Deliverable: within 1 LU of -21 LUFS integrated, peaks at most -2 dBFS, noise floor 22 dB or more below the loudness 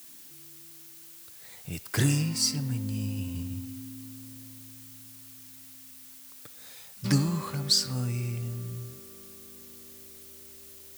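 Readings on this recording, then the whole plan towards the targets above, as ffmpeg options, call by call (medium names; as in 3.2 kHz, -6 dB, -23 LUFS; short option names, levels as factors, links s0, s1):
noise floor -49 dBFS; noise floor target -51 dBFS; loudness -29.0 LUFS; peak level -11.5 dBFS; loudness target -21.0 LUFS
-> -af "afftdn=nr=6:nf=-49"
-af "volume=2.51"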